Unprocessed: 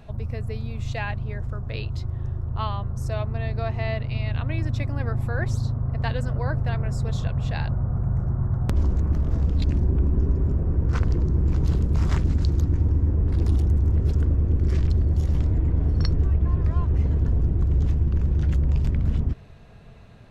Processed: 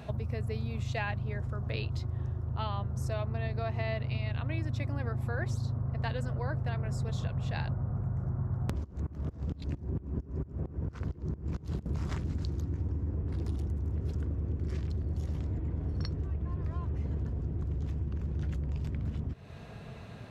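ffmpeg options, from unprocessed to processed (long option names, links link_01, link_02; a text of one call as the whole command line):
ffmpeg -i in.wav -filter_complex "[0:a]asettb=1/sr,asplit=3[link_01][link_02][link_03];[link_01]atrim=end=2.514[link_04];[link_02]atrim=start=2.51:end=2.98,asetpts=PTS-STARTPTS,afade=type=in:duration=0.004:curve=qsin,afade=type=out:start_time=0.466:duration=0.004:curve=qsin,bandreject=frequency=1100:width=12[link_05];[link_03]atrim=start=2.976[link_06];[link_04][link_05]acrossfade=duration=0.004:curve1=hsin:curve2=qsin[link_07];[link_07][link_06]acrossfade=duration=0.004:curve1=qsin:curve2=hsin,asettb=1/sr,asplit=3[link_08][link_09][link_10];[link_08]atrim=end=8.844[link_11];[link_09]atrim=start=8.84:end=11.86,asetpts=PTS-STARTPTS,afade=type=in:duration=0.004:curve=qsin,afade=type=out:start_time=3.016:duration=0.004:curve=qsin,aeval=exprs='val(0)*pow(10,-24*if(lt(mod(-4.4*n/s,1),2*abs(-4.4)/1000),1-mod(-4.4*n/s,1)/(2*abs(-4.4)/1000),(mod(-4.4*n/s,1)-2*abs(-4.4)/1000)/(1-2*abs(-4.4)/1000))/20)':channel_layout=same[link_12];[link_10]atrim=start=11.856[link_13];[link_11][link_12]acrossfade=duration=0.004:curve1=hsin:curve2=qsin[link_14];[link_14][link_13]acrossfade=duration=0.004:curve1=qsin:curve2=hsin,acompressor=threshold=-32dB:ratio=6,highpass=76,volume=4dB" out.wav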